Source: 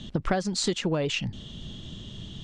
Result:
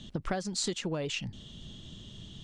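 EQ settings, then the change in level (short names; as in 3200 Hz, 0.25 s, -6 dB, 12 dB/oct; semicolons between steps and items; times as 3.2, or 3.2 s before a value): high shelf 6700 Hz +8.5 dB; -7.0 dB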